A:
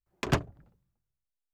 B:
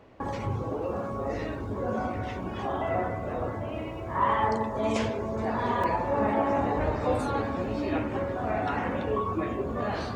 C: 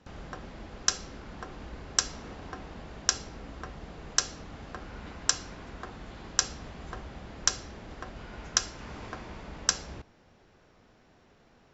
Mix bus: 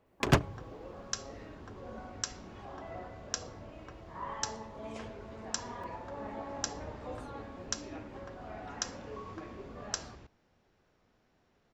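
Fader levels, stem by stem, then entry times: +2.0, −16.0, −10.5 decibels; 0.00, 0.00, 0.25 seconds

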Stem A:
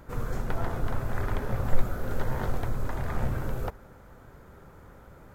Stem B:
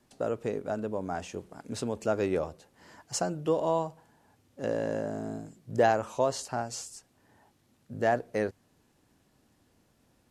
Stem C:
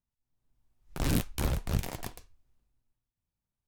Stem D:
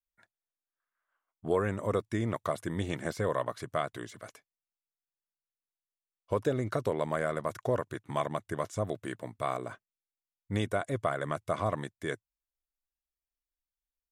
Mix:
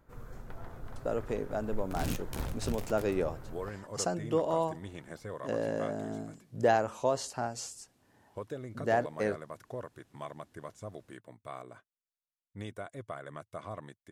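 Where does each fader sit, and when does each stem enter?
−15.0, −2.0, −7.0, −11.0 decibels; 0.00, 0.85, 0.95, 2.05 seconds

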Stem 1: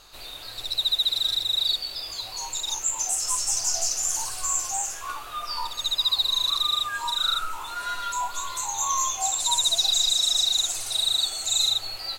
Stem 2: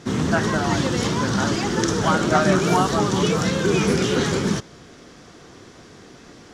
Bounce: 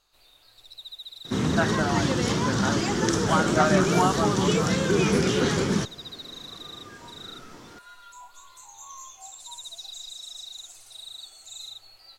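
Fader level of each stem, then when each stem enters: −18.0, −2.5 decibels; 0.00, 1.25 seconds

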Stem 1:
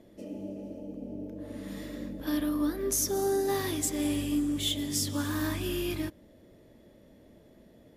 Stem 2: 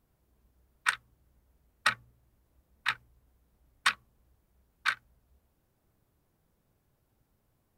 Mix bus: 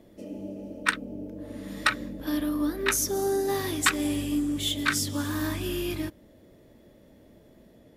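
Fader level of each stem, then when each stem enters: +1.5, +3.0 decibels; 0.00, 0.00 seconds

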